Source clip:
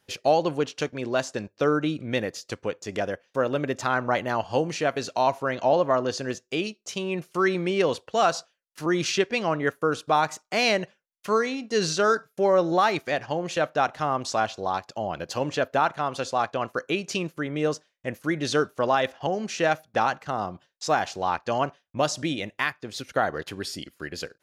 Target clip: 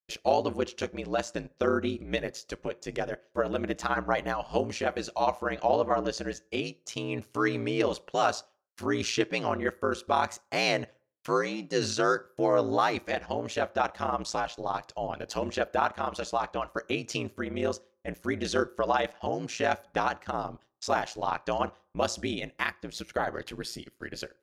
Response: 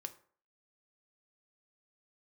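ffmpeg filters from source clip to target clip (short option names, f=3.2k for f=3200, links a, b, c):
-filter_complex "[0:a]aeval=exprs='val(0)*sin(2*PI*57*n/s)':c=same,agate=range=-33dB:threshold=-48dB:ratio=3:detection=peak,asplit=2[a][b];[1:a]atrim=start_sample=2205[c];[b][c]afir=irnorm=-1:irlink=0,volume=-6.5dB[d];[a][d]amix=inputs=2:normalize=0,volume=-3.5dB"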